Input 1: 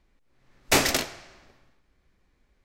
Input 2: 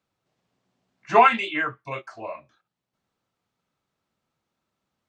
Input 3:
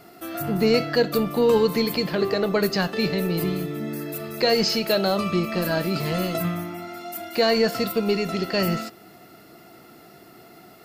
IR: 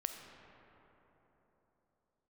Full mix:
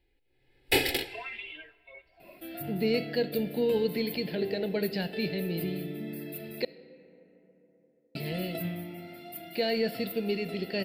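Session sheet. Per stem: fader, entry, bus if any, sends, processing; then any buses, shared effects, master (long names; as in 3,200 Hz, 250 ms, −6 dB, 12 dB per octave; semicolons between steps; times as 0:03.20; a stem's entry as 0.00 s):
−3.0 dB, 0.00 s, no send, comb filter 2.4 ms, depth 81%
−6.0 dB, 0.00 s, send −12.5 dB, harmonic-percussive split with one part muted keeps harmonic; downward compressor, threshold −22 dBFS, peak gain reduction 9 dB; high-pass filter 950 Hz 12 dB per octave
−9.0 dB, 2.20 s, muted 0:06.65–0:08.15, send −6 dB, no processing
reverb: on, RT60 3.9 s, pre-delay 5 ms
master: low-shelf EQ 81 Hz −10.5 dB; phaser with its sweep stopped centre 2,800 Hz, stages 4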